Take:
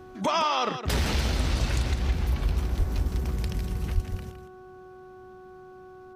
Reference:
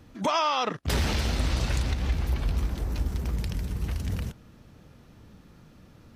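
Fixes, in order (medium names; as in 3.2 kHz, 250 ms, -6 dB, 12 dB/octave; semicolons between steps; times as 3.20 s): de-hum 371.1 Hz, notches 4; de-plosive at 2.78/3.94 s; inverse comb 162 ms -9.5 dB; gain correction +6.5 dB, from 3.95 s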